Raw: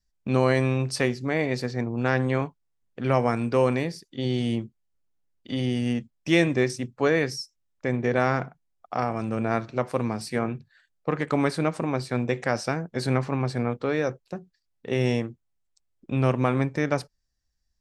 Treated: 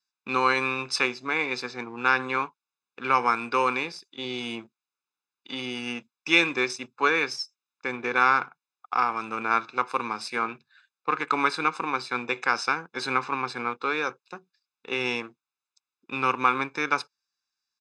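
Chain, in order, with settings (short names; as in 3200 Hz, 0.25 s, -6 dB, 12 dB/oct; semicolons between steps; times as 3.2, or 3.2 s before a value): comb 0.8 ms, depth 97%; in parallel at -8 dB: backlash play -28 dBFS; on the sum: BPF 690–5700 Hz; gain +1.5 dB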